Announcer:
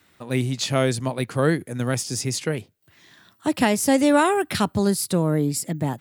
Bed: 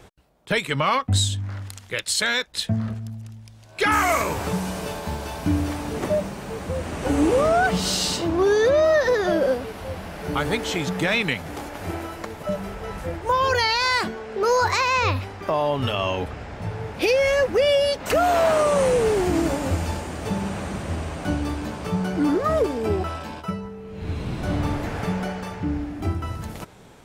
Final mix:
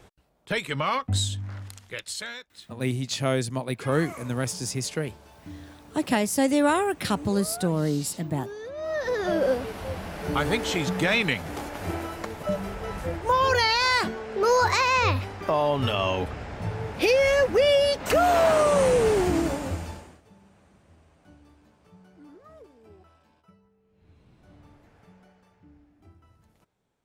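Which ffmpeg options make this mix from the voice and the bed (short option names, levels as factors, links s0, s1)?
-filter_complex "[0:a]adelay=2500,volume=0.631[s0];[1:a]volume=5.01,afade=t=out:st=1.67:d=0.78:silence=0.177828,afade=t=in:st=8.75:d=0.84:silence=0.112202,afade=t=out:st=19.2:d=1.02:silence=0.0398107[s1];[s0][s1]amix=inputs=2:normalize=0"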